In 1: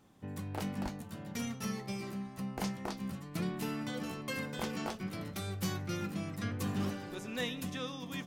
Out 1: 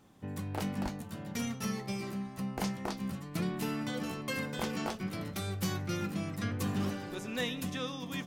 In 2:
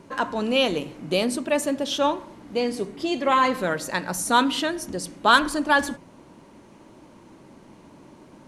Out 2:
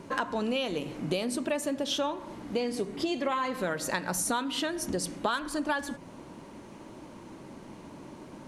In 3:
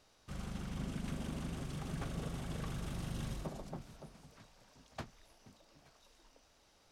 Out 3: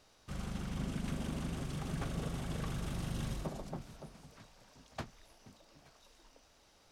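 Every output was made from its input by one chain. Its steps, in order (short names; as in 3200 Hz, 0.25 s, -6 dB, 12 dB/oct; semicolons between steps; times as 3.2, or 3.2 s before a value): compressor 12:1, threshold -29 dBFS; gain +2.5 dB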